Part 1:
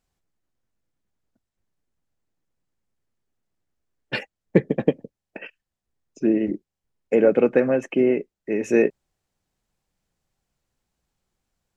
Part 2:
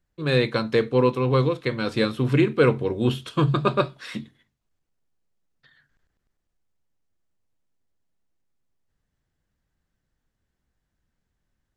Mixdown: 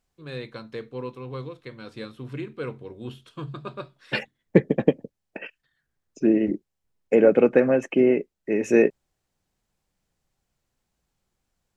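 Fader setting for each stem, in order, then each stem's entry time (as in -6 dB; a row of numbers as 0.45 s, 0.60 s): +0.5 dB, -14.5 dB; 0.00 s, 0.00 s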